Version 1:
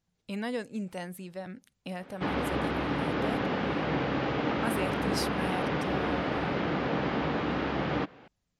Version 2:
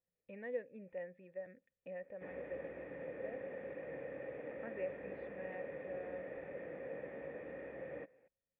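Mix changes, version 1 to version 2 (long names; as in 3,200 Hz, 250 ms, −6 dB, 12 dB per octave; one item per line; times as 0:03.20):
background −6.0 dB
master: add formant resonators in series e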